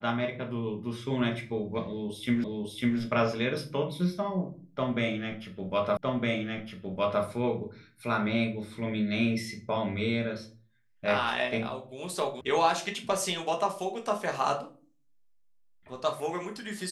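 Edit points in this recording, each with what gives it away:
2.44 repeat of the last 0.55 s
5.97 repeat of the last 1.26 s
12.41 sound cut off

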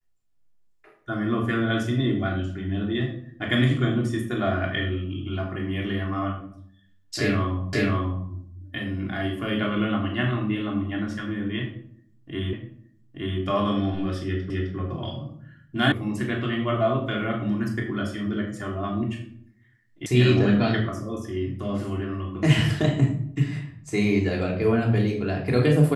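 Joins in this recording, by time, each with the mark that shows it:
7.73 repeat of the last 0.54 s
12.53 repeat of the last 0.87 s
14.5 repeat of the last 0.26 s
15.92 sound cut off
20.06 sound cut off

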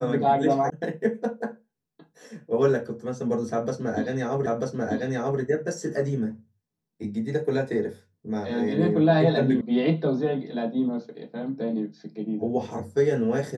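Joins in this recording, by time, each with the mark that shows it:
0.7 sound cut off
4.46 repeat of the last 0.94 s
9.61 sound cut off

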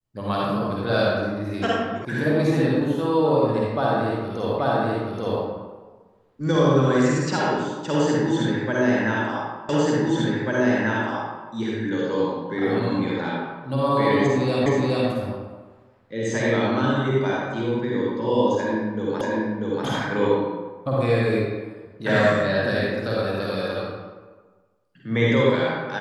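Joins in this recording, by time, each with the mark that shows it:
2.05 sound cut off
4.59 repeat of the last 0.83 s
9.69 repeat of the last 1.79 s
14.66 repeat of the last 0.42 s
19.21 repeat of the last 0.64 s

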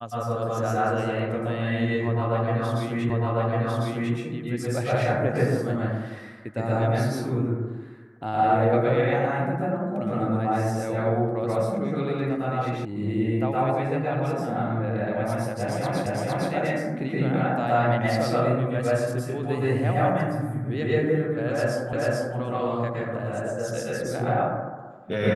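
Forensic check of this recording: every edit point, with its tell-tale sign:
3.1 repeat of the last 1.05 s
12.85 sound cut off
16.06 repeat of the last 0.46 s
21.93 repeat of the last 0.44 s

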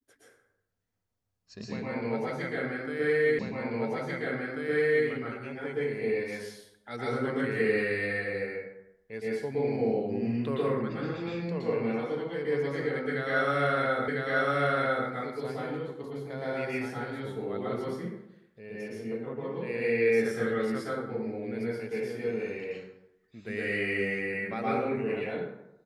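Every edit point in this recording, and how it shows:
3.39 repeat of the last 1.69 s
14.08 repeat of the last 1 s

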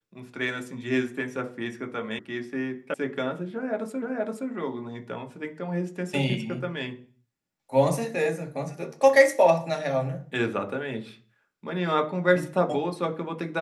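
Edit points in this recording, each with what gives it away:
2.19 sound cut off
2.94 sound cut off
4.02 repeat of the last 0.47 s

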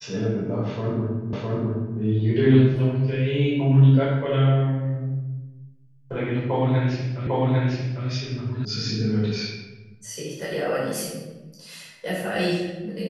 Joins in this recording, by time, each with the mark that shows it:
1.33 repeat of the last 0.66 s
7.27 repeat of the last 0.8 s
8.65 sound cut off

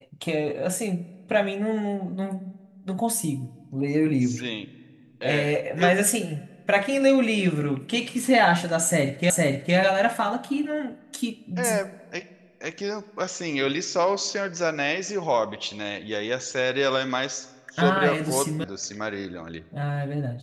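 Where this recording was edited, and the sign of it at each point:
9.3 repeat of the last 0.46 s
18.64 sound cut off

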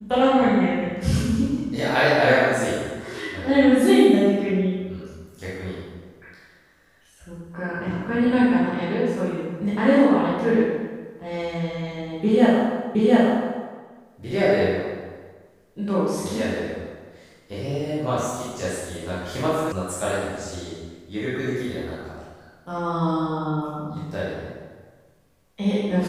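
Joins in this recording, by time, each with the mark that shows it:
12.95 repeat of the last 0.71 s
19.72 sound cut off

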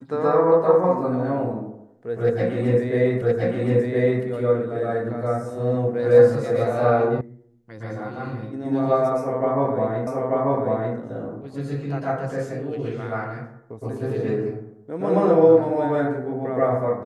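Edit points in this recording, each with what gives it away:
3.22 repeat of the last 1.02 s
7.21 sound cut off
10.07 repeat of the last 0.89 s

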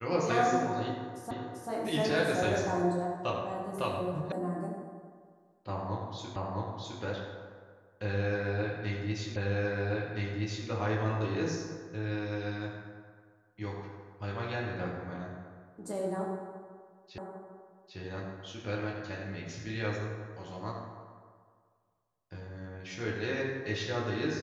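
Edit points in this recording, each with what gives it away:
1.31 repeat of the last 0.39 s
4.32 sound cut off
6.36 repeat of the last 0.66 s
9.36 repeat of the last 1.32 s
17.18 repeat of the last 0.8 s

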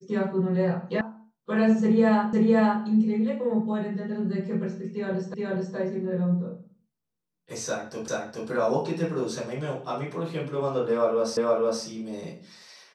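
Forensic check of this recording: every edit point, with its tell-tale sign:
1.01 sound cut off
2.33 repeat of the last 0.51 s
5.34 repeat of the last 0.42 s
8.08 repeat of the last 0.42 s
11.37 repeat of the last 0.47 s

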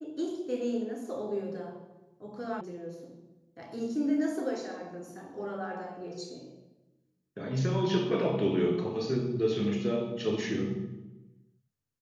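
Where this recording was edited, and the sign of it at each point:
2.61 sound cut off

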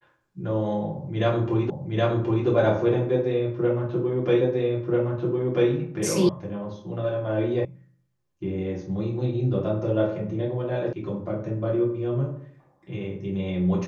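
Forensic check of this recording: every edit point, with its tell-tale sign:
1.7 repeat of the last 0.77 s
4.41 repeat of the last 1.29 s
6.29 sound cut off
7.65 sound cut off
10.93 sound cut off

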